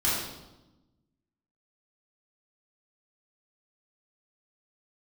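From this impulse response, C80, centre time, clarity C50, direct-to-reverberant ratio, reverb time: 3.0 dB, 71 ms, -0.5 dB, -11.0 dB, 1.0 s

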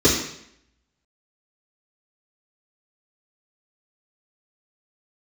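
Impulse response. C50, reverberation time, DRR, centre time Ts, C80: 5.5 dB, 0.70 s, -12.0 dB, 32 ms, 9.0 dB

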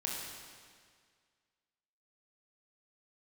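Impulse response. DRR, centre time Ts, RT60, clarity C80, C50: -3.0 dB, 0.101 s, 1.9 s, 1.5 dB, 0.0 dB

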